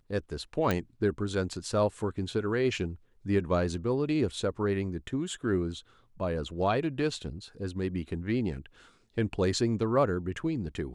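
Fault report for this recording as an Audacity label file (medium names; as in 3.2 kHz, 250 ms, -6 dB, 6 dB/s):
0.710000	0.710000	pop -14 dBFS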